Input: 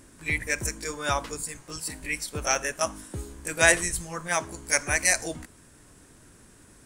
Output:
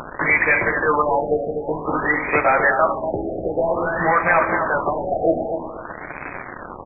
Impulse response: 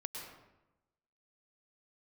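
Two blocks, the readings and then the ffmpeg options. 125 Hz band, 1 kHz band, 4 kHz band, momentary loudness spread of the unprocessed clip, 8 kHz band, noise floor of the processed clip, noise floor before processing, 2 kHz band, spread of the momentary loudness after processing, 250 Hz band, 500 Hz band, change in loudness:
+4.5 dB, +13.5 dB, under -35 dB, 14 LU, under -40 dB, -35 dBFS, -55 dBFS, +7.5 dB, 16 LU, +11.5 dB, +12.5 dB, +7.0 dB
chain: -filter_complex "[0:a]asplit=2[a][b];[b]highpass=f=720:p=1,volume=26dB,asoftclip=type=tanh:threshold=-2dB[c];[a][c]amix=inputs=2:normalize=0,lowpass=f=2.5k:p=1,volume=-6dB,equalizer=f=920:w=0.42:g=9,acompressor=threshold=-18dB:ratio=1.5,alimiter=limit=-14dB:level=0:latency=1:release=355,aresample=8000,acrusher=bits=4:mix=0:aa=0.000001,aresample=44100,bandreject=f=69.12:t=h:w=4,bandreject=f=138.24:t=h:w=4,bandreject=f=207.36:t=h:w=4,bandreject=f=276.48:t=h:w=4,bandreject=f=345.6:t=h:w=4,bandreject=f=414.72:t=h:w=4,bandreject=f=483.84:t=h:w=4,bandreject=f=552.96:t=h:w=4,bandreject=f=622.08:t=h:w=4,flanger=delay=6.6:depth=6:regen=84:speed=0.49:shape=sinusoidal,aecho=1:1:246|492|738:0.447|0.112|0.0279,asplit=2[d][e];[1:a]atrim=start_sample=2205,asetrate=52920,aresample=44100[f];[e][f]afir=irnorm=-1:irlink=0,volume=-3dB[g];[d][g]amix=inputs=2:normalize=0,afftfilt=real='re*lt(b*sr/1024,770*pow(2600/770,0.5+0.5*sin(2*PI*0.52*pts/sr)))':imag='im*lt(b*sr/1024,770*pow(2600/770,0.5+0.5*sin(2*PI*0.52*pts/sr)))':win_size=1024:overlap=0.75,volume=8dB"

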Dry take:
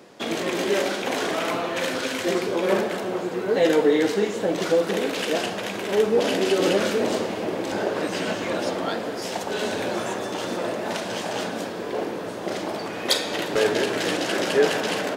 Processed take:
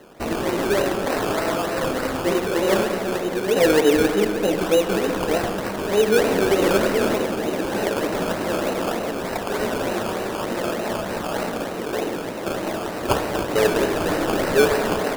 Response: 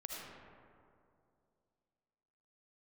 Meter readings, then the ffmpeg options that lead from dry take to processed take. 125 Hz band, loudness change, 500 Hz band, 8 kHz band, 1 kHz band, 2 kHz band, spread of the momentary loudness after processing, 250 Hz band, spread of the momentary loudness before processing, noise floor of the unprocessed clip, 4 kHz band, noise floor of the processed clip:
+5.5 dB, +2.5 dB, +2.5 dB, +2.0 dB, +3.5 dB, +2.0 dB, 8 LU, +3.0 dB, 9 LU, -32 dBFS, -1.5 dB, -29 dBFS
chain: -filter_complex "[0:a]acrusher=samples=18:mix=1:aa=0.000001:lfo=1:lforange=10.8:lforate=3.3,asplit=2[a][b];[1:a]atrim=start_sample=2205,lowpass=3.1k[c];[b][c]afir=irnorm=-1:irlink=0,volume=-4.5dB[d];[a][d]amix=inputs=2:normalize=0"

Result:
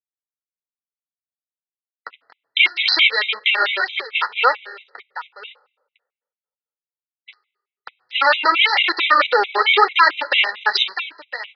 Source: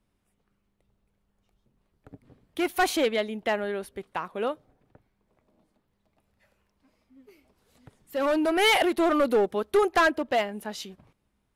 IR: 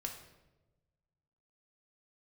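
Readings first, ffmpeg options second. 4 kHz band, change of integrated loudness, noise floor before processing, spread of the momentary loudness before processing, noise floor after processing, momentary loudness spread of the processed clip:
+15.0 dB, +9.5 dB, -75 dBFS, 15 LU, under -85 dBFS, 15 LU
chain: -filter_complex "[0:a]aecho=1:1:2.2:0.82,acompressor=threshold=-44dB:ratio=1.5,aeval=exprs='sgn(val(0))*max(abs(val(0))-0.00473,0)':c=same,flanger=delay=0.8:depth=8.1:regen=-33:speed=1.7:shape=sinusoidal,asuperpass=centerf=3500:order=4:qfactor=0.53,aecho=1:1:1007:0.141,asplit=2[a][b];[1:a]atrim=start_sample=2205[c];[b][c]afir=irnorm=-1:irlink=0,volume=-14.5dB[d];[a][d]amix=inputs=2:normalize=0,aresample=11025,aresample=44100,alimiter=level_in=35.5dB:limit=-1dB:release=50:level=0:latency=1,afftfilt=real='re*gt(sin(2*PI*4.5*pts/sr)*(1-2*mod(floor(b*sr/1024/2000),2)),0)':imag='im*gt(sin(2*PI*4.5*pts/sr)*(1-2*mod(floor(b*sr/1024/2000),2)),0)':win_size=1024:overlap=0.75,volume=-1dB"

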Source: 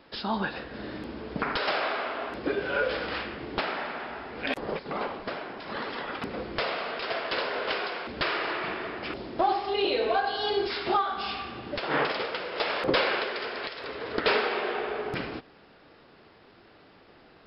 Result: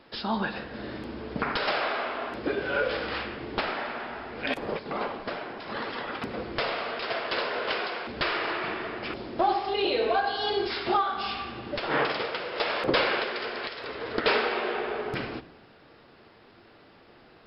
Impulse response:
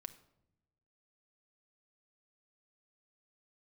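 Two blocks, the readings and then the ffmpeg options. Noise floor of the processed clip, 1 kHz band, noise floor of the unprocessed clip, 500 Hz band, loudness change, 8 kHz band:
-55 dBFS, +0.5 dB, -56 dBFS, +0.5 dB, +0.5 dB, n/a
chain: -filter_complex "[0:a]asplit=2[a][b];[1:a]atrim=start_sample=2205,asetrate=28665,aresample=44100[c];[b][c]afir=irnorm=-1:irlink=0,volume=4.5dB[d];[a][d]amix=inputs=2:normalize=0,volume=-6.5dB"

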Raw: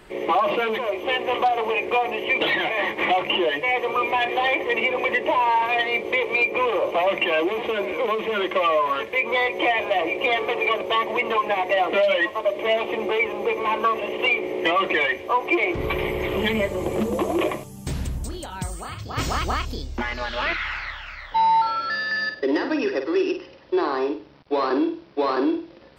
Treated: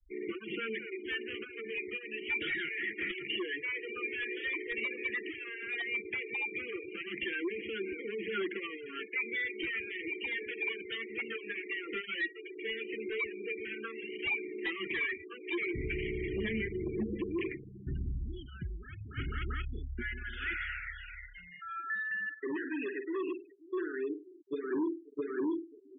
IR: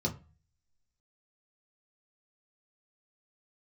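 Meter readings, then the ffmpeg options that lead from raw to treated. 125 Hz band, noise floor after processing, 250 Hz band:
-8.5 dB, -53 dBFS, -10.5 dB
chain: -filter_complex "[0:a]asuperstop=centerf=770:order=12:qfactor=0.8,acrossover=split=2900[a][b];[b]acompressor=threshold=-45dB:ratio=4:attack=1:release=60[c];[a][c]amix=inputs=2:normalize=0,equalizer=f=170:t=o:w=2:g=-3.5,aresample=8000,asoftclip=type=hard:threshold=-22.5dB,aresample=44100,aphaser=in_gain=1:out_gain=1:delay=2.2:decay=0.23:speed=0.12:type=triangular,aecho=1:1:537|1074|1611:0.1|0.033|0.0109,afftfilt=real='re*gte(hypot(re,im),0.0282)':imag='im*gte(hypot(re,im),0.0282)':win_size=1024:overlap=0.75,volume=-8dB"

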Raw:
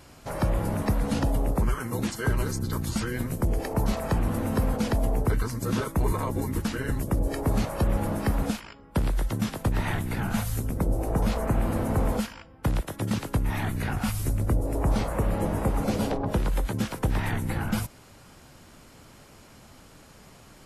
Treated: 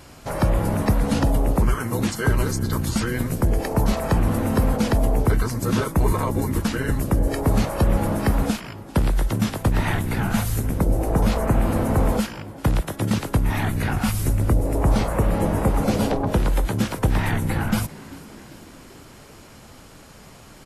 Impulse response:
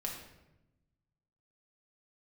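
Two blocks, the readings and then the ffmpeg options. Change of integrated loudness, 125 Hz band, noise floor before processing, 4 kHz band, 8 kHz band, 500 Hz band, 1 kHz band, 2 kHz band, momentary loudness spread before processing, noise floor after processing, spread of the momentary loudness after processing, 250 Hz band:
+5.5 dB, +5.5 dB, -52 dBFS, +5.5 dB, +5.5 dB, +5.5 dB, +5.5 dB, +5.5 dB, 4 LU, -45 dBFS, 4 LU, +5.5 dB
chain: -filter_complex "[0:a]asplit=6[a][b][c][d][e][f];[b]adelay=392,afreqshift=58,volume=-20dB[g];[c]adelay=784,afreqshift=116,volume=-24.9dB[h];[d]adelay=1176,afreqshift=174,volume=-29.8dB[i];[e]adelay=1568,afreqshift=232,volume=-34.6dB[j];[f]adelay=1960,afreqshift=290,volume=-39.5dB[k];[a][g][h][i][j][k]amix=inputs=6:normalize=0,volume=5.5dB"

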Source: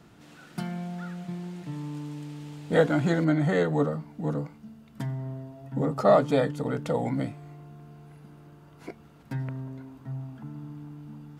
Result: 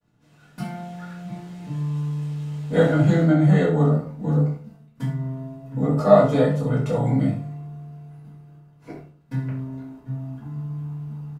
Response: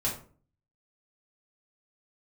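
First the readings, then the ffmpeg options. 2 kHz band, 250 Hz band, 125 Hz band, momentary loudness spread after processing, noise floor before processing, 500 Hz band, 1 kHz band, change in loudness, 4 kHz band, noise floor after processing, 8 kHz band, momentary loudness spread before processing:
+1.5 dB, +6.5 dB, +9.5 dB, 19 LU, -53 dBFS, +4.5 dB, +3.0 dB, +6.5 dB, +1.5 dB, -54 dBFS, n/a, 20 LU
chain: -filter_complex "[0:a]agate=range=-33dB:threshold=-43dB:ratio=3:detection=peak,aecho=1:1:26|66:0.376|0.316[a];[1:a]atrim=start_sample=2205,asetrate=48510,aresample=44100[b];[a][b]afir=irnorm=-1:irlink=0,volume=-4dB"

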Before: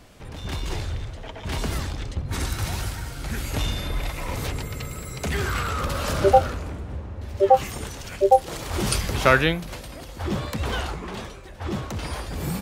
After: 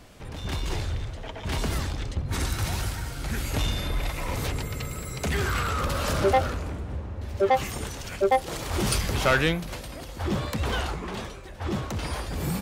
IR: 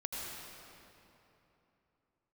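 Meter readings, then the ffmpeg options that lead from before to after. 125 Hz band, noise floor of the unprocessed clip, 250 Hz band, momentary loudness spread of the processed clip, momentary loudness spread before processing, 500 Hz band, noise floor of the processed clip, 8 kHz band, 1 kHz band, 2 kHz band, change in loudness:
-0.5 dB, -39 dBFS, -1.0 dB, 12 LU, 16 LU, -4.0 dB, -39 dBFS, -1.0 dB, -4.5 dB, -2.0 dB, -3.0 dB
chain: -af "asoftclip=type=tanh:threshold=-15dB"

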